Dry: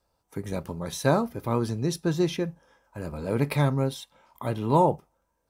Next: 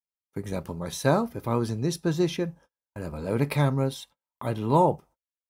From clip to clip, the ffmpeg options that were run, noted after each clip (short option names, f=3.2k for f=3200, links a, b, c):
-af "agate=range=-39dB:threshold=-49dB:ratio=16:detection=peak"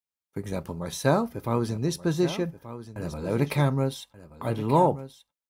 -af "aecho=1:1:1180:0.211"